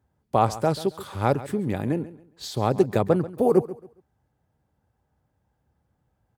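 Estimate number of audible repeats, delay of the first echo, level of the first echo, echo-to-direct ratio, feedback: 2, 0.137 s, -16.5 dB, -16.0 dB, 27%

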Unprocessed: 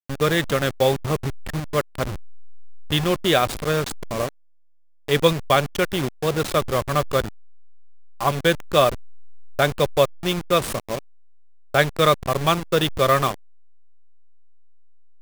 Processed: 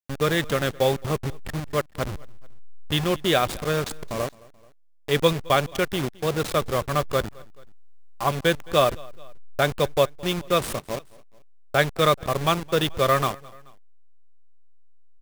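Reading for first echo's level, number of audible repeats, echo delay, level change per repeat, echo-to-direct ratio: -23.5 dB, 2, 0.216 s, -5.0 dB, -22.5 dB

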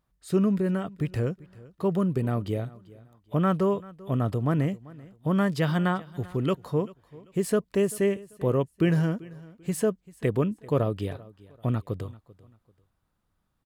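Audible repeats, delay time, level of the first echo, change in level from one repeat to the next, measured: 2, 0.39 s, -21.0 dB, -10.5 dB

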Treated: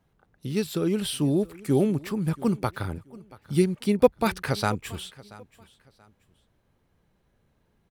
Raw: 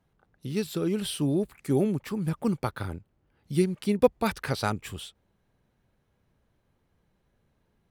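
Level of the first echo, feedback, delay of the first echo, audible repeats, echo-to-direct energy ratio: -21.0 dB, 28%, 0.681 s, 2, -20.5 dB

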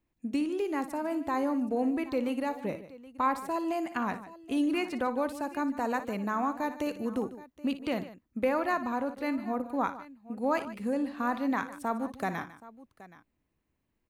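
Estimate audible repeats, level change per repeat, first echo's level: 3, no steady repeat, -13.0 dB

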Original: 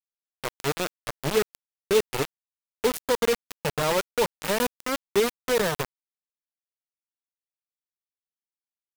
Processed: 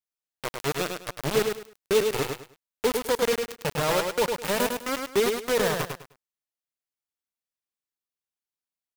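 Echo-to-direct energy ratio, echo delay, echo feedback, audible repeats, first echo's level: -4.5 dB, 0.103 s, 24%, 3, -5.0 dB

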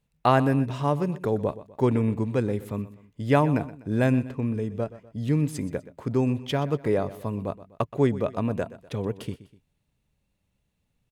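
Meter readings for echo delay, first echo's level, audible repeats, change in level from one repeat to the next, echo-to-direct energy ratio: 0.124 s, -16.5 dB, 2, -7.0 dB, -15.5 dB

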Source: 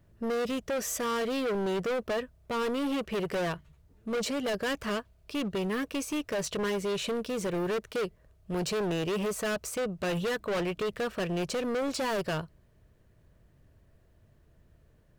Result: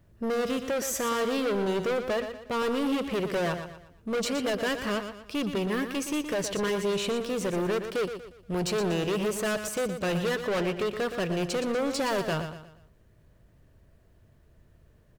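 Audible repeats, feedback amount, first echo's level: 4, 38%, -9.0 dB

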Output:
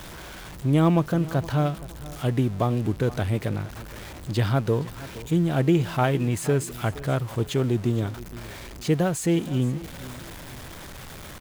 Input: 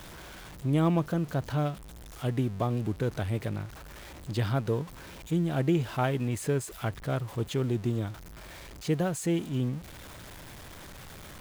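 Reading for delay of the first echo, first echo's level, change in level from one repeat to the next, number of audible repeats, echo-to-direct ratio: 0.469 s, -17.5 dB, -9.0 dB, 2, -17.0 dB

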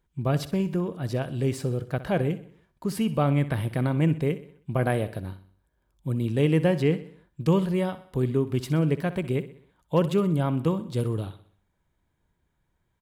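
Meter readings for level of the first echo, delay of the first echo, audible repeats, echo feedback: -15.0 dB, 63 ms, 4, 49%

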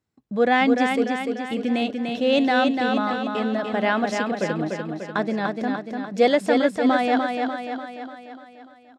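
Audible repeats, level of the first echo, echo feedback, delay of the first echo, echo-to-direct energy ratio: 7, -4.5 dB, 56%, 0.295 s, -3.0 dB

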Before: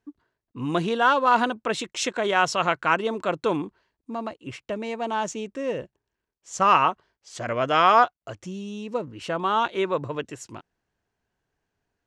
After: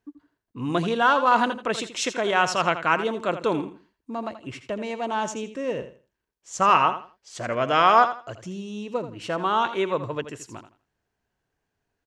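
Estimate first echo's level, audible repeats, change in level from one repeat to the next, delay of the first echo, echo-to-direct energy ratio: -11.5 dB, 2, -12.5 dB, 82 ms, -11.0 dB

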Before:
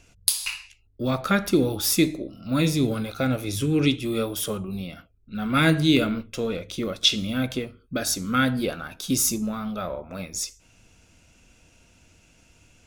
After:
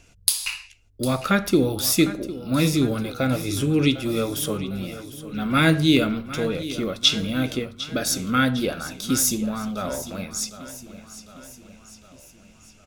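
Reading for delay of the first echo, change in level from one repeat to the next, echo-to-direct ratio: 0.754 s, -5.0 dB, -13.0 dB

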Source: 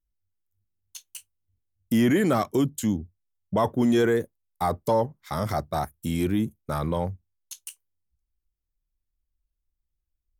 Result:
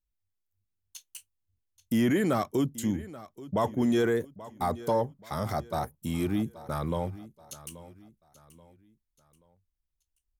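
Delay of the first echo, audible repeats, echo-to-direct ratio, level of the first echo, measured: 0.831 s, 3, -17.0 dB, -17.5 dB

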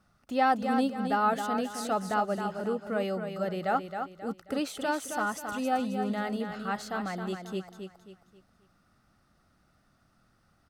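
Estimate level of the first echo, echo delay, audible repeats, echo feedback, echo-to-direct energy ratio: -7.0 dB, 0.268 s, 4, 37%, -6.5 dB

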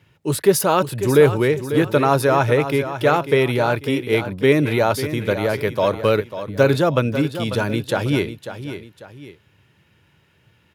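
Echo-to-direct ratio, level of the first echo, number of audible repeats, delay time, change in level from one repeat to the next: -10.5 dB, -11.0 dB, 2, 0.545 s, -8.5 dB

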